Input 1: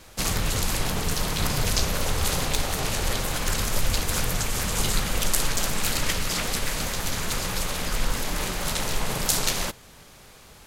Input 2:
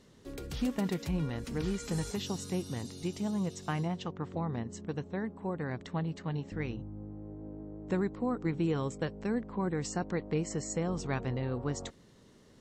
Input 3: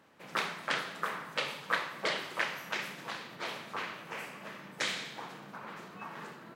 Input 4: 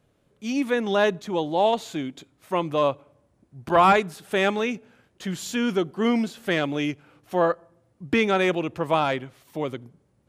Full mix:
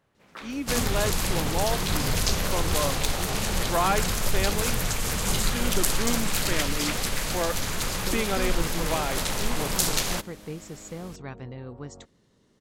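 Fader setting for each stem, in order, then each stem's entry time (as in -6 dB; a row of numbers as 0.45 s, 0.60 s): -1.0 dB, -5.0 dB, -9.5 dB, -7.5 dB; 0.50 s, 0.15 s, 0.00 s, 0.00 s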